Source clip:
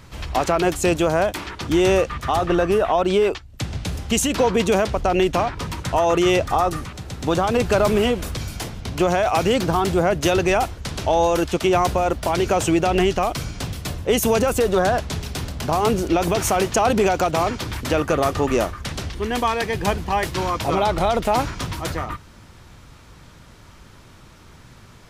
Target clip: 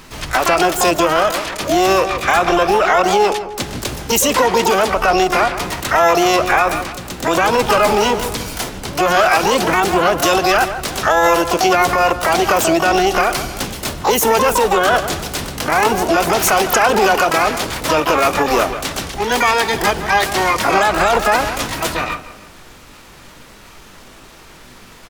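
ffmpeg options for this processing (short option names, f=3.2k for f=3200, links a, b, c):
-filter_complex "[0:a]asplit=2[a][b];[b]adelay=158,lowpass=f=1.5k:p=1,volume=-12dB,asplit=2[c][d];[d]adelay=158,lowpass=f=1.5k:p=1,volume=0.42,asplit=2[e][f];[f]adelay=158,lowpass=f=1.5k:p=1,volume=0.42,asplit=2[g][h];[h]adelay=158,lowpass=f=1.5k:p=1,volume=0.42[i];[a][c][e][g][i]amix=inputs=5:normalize=0,asplit=2[j][k];[k]asetrate=88200,aresample=44100,atempo=0.5,volume=-3dB[l];[j][l]amix=inputs=2:normalize=0,alimiter=limit=-9.5dB:level=0:latency=1:release=49,equalizer=f=96:w=0.48:g=-12,volume=7dB"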